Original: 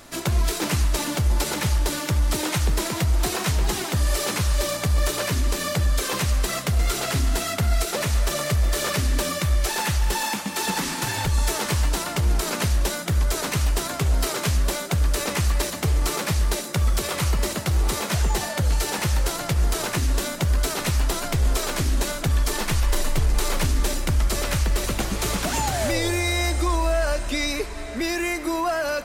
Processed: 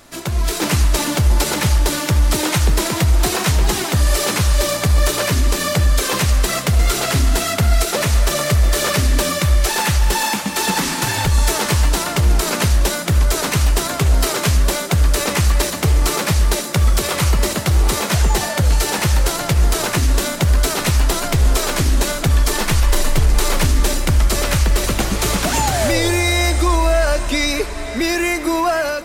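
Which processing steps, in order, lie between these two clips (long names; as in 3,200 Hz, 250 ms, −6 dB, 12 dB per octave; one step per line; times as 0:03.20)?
automatic gain control gain up to 7 dB
on a send: feedback echo with a high-pass in the loop 539 ms, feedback 48%, level −18 dB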